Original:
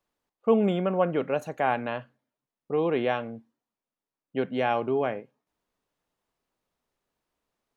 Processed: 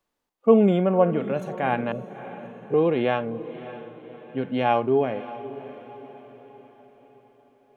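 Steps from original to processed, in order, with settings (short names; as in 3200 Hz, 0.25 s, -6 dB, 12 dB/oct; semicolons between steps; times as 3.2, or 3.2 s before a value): harmonic-percussive split percussive -11 dB; 1.92–2.74 steep low-pass 540 Hz; diffused feedback echo 0.592 s, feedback 47%, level -14.5 dB; gain +6 dB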